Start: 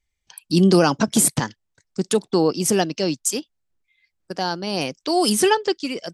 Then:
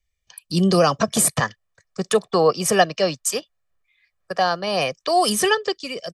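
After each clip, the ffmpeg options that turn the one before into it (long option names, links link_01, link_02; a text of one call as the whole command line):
ffmpeg -i in.wav -filter_complex "[0:a]aecho=1:1:1.7:0.6,acrossover=split=270|610|2300[link_01][link_02][link_03][link_04];[link_03]dynaudnorm=framelen=200:gausssize=11:maxgain=12dB[link_05];[link_01][link_02][link_05][link_04]amix=inputs=4:normalize=0,volume=-2dB" out.wav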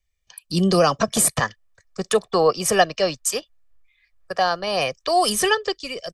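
ffmpeg -i in.wav -af "asubboost=boost=8.5:cutoff=60" out.wav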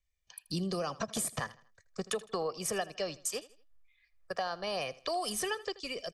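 ffmpeg -i in.wav -af "acompressor=threshold=-24dB:ratio=6,aecho=1:1:80|160|240:0.112|0.0415|0.0154,volume=-7.5dB" out.wav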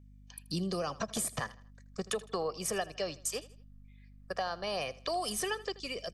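ffmpeg -i in.wav -af "aeval=exprs='val(0)+0.002*(sin(2*PI*50*n/s)+sin(2*PI*2*50*n/s)/2+sin(2*PI*3*50*n/s)/3+sin(2*PI*4*50*n/s)/4+sin(2*PI*5*50*n/s)/5)':channel_layout=same" out.wav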